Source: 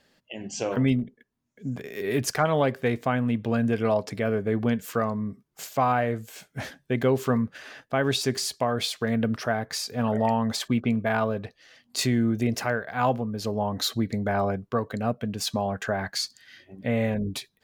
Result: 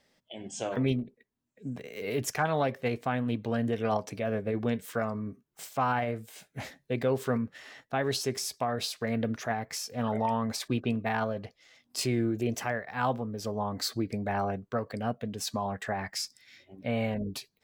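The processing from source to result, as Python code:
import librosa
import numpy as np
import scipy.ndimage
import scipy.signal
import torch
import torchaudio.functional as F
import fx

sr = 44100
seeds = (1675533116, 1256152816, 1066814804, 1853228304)

y = fx.formant_shift(x, sr, semitones=2)
y = y * librosa.db_to_amplitude(-5.0)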